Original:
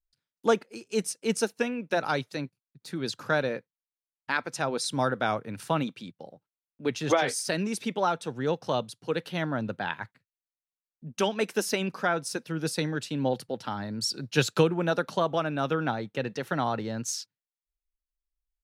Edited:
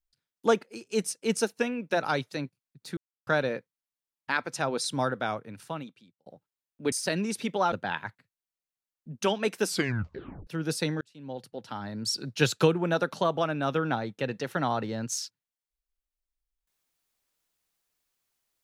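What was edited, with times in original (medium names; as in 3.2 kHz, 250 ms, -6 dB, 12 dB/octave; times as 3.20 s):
2.97–3.27 s: mute
4.80–6.26 s: fade out linear
6.92–7.34 s: delete
8.14–9.68 s: delete
11.58 s: tape stop 0.85 s
12.97–14.10 s: fade in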